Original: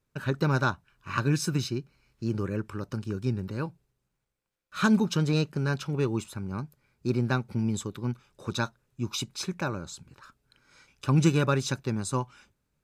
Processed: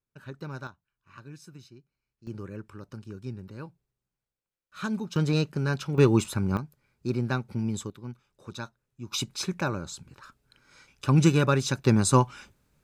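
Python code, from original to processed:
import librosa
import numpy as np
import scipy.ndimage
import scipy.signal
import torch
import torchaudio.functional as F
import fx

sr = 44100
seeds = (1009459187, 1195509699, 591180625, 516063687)

y = fx.gain(x, sr, db=fx.steps((0.0, -13.0), (0.67, -20.0), (2.27, -8.5), (5.16, 0.5), (5.98, 8.0), (6.57, -1.5), (7.9, -8.5), (9.12, 2.0), (11.84, 9.0)))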